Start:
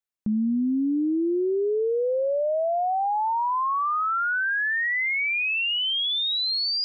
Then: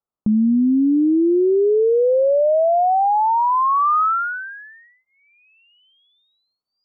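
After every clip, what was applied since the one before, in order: elliptic low-pass 1300 Hz, stop band 40 dB; gain +8.5 dB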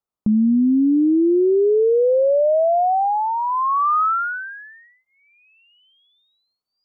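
dynamic EQ 930 Hz, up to -5 dB, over -33 dBFS, Q 3.7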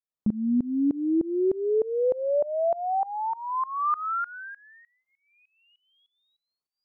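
tremolo saw up 3.3 Hz, depth 95%; gain -4.5 dB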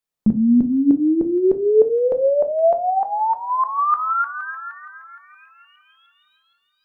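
thin delay 0.468 s, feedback 35%, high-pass 1900 Hz, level -6 dB; on a send at -8 dB: reverb RT60 0.30 s, pre-delay 4 ms; on the sum: gain +7.5 dB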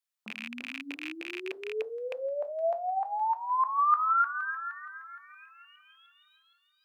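rattling part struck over -30 dBFS, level -21 dBFS; HPF 1200 Hz 12 dB/oct; gain -2.5 dB

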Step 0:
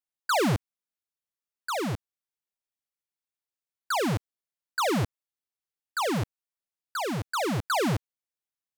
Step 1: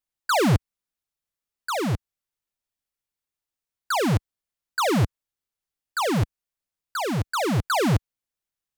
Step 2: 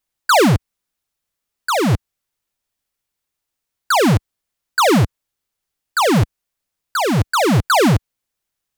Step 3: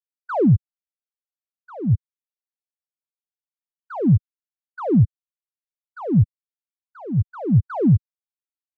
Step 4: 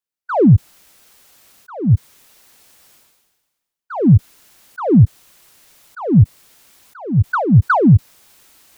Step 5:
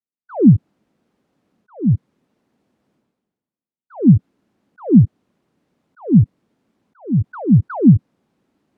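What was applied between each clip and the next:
low shelf 90 Hz +11.5 dB; gain +3 dB
limiter -17 dBFS, peak gain reduction 6 dB; gain +9 dB
spectral expander 2.5:1
sustainer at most 42 dB/s; gain +5.5 dB
band-pass 220 Hz, Q 1.7; gain +3.5 dB

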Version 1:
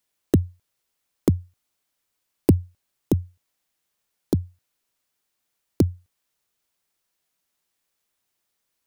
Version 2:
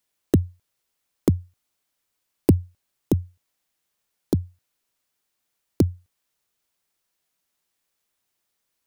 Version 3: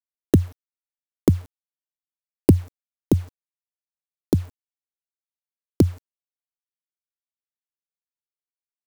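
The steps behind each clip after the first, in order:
nothing audible
requantised 8-bit, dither none; gain +2.5 dB

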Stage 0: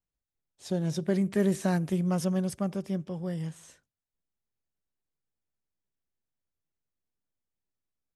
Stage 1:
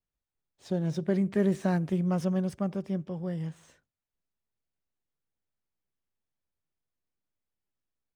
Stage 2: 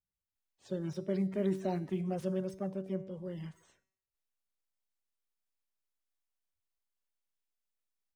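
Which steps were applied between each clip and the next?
median filter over 3 samples; high shelf 4400 Hz -10 dB
bin magnitudes rounded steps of 30 dB; resonator 190 Hz, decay 0.7 s, harmonics all, mix 60%

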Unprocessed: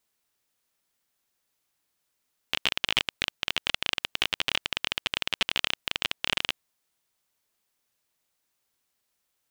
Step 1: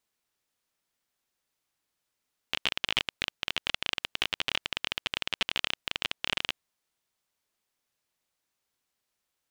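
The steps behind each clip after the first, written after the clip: high shelf 9500 Hz -6 dB; gain -2.5 dB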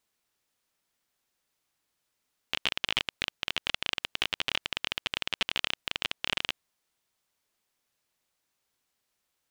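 limiter -12.5 dBFS, peak gain reduction 5.5 dB; gain +2.5 dB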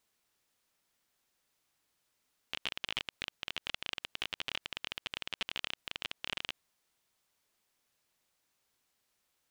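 limiter -19 dBFS, peak gain reduction 9 dB; gain +1 dB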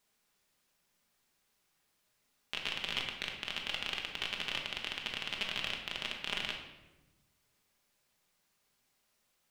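shoebox room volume 520 m³, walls mixed, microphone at 1.3 m

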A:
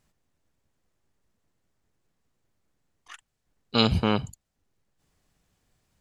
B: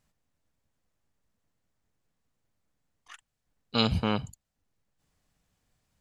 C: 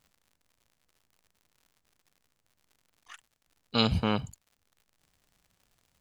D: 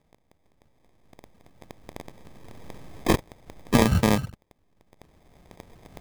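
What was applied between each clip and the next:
bell 370 Hz -6 dB 0.28 oct; gain -3.5 dB
crackle 110/s -51 dBFS
recorder AGC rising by 11 dB/s; sample-and-hold 31×; gain +6 dB

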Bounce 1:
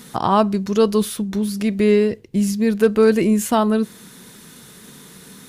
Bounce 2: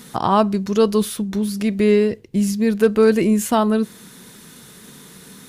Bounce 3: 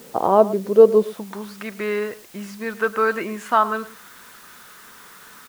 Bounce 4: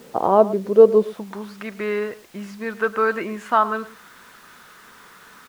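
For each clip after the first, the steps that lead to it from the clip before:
nothing audible
band-pass sweep 520 Hz -> 1300 Hz, 0.98–1.49; added noise white -56 dBFS; outdoor echo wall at 19 m, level -17 dB; gain +8 dB
high shelf 5900 Hz -9 dB

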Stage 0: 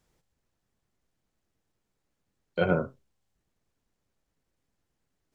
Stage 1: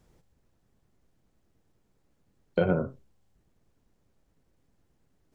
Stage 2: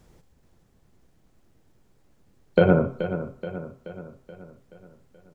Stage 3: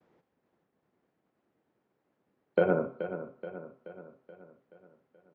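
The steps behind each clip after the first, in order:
tilt shelf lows +4.5 dB, about 860 Hz; compressor 6:1, threshold -28 dBFS, peak gain reduction 11.5 dB; gain +6.5 dB
feedback echo 0.428 s, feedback 53%, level -11 dB; on a send at -16 dB: reverb RT60 0.45 s, pre-delay 77 ms; on the sum: gain +7.5 dB
expander -58 dBFS; BPF 260–2200 Hz; gain -6 dB

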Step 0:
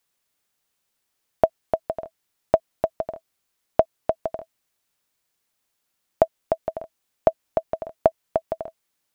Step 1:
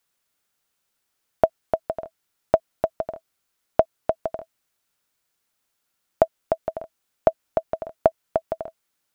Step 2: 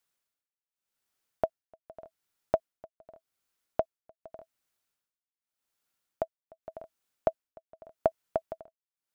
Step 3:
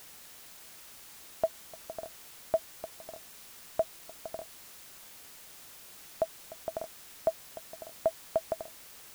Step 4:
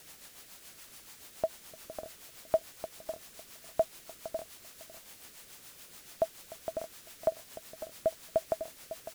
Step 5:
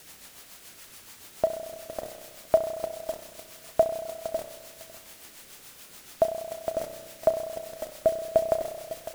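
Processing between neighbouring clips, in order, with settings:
bell 1400 Hz +4.5 dB 0.23 oct
tremolo 0.85 Hz, depth 97%; gain -6 dB
reverse; compressor, threshold -33 dBFS, peak gain reduction 14 dB; reverse; added noise white -58 dBFS; gain +7 dB
rotary speaker horn 7 Hz; echo 0.553 s -13 dB; gain +2 dB
in parallel at -6.5 dB: sample gate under -40 dBFS; on the sum: spring tank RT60 1.5 s, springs 32 ms, chirp 55 ms, DRR 6.5 dB; gain +3.5 dB

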